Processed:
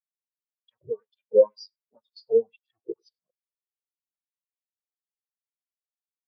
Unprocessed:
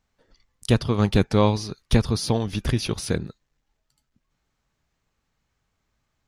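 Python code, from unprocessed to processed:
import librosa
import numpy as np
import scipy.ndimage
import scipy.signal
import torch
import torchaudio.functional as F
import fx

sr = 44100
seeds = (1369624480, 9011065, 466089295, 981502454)

p1 = fx.highpass(x, sr, hz=55.0, slope=24, at=(2.07, 2.71))
p2 = fx.fuzz(p1, sr, gain_db=42.0, gate_db=-39.0)
p3 = fx.filter_lfo_bandpass(p2, sr, shape='sine', hz=2.0, low_hz=440.0, high_hz=5100.0, q=1.4)
p4 = p3 + fx.echo_single(p3, sr, ms=100, db=-11.5, dry=0)
p5 = fx.spectral_expand(p4, sr, expansion=4.0)
y = F.gain(torch.from_numpy(p5), 4.5).numpy()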